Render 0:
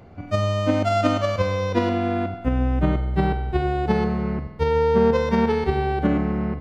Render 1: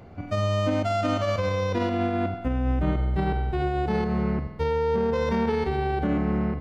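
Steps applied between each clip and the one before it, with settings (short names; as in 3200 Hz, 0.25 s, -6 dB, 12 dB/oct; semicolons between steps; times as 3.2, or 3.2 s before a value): limiter -16 dBFS, peak gain reduction 9.5 dB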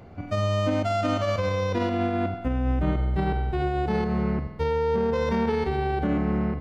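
nothing audible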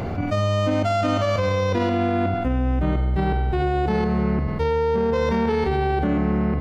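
fast leveller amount 70%; gain +1.5 dB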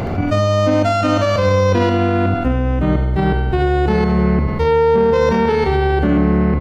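echo 72 ms -10 dB; gain +6 dB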